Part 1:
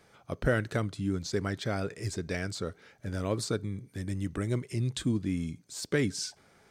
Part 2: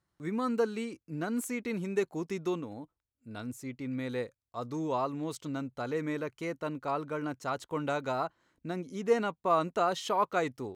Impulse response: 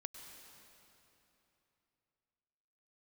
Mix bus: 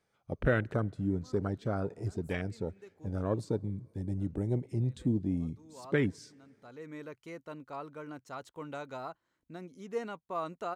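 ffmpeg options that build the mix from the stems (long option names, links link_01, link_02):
-filter_complex "[0:a]afwtdn=0.0158,volume=-1dB,asplit=3[link_01][link_02][link_03];[link_02]volume=-21.5dB[link_04];[1:a]adelay=850,volume=-9dB[link_05];[link_03]apad=whole_len=511814[link_06];[link_05][link_06]sidechaincompress=threshold=-48dB:ratio=5:attack=7.4:release=598[link_07];[2:a]atrim=start_sample=2205[link_08];[link_04][link_08]afir=irnorm=-1:irlink=0[link_09];[link_01][link_07][link_09]amix=inputs=3:normalize=0"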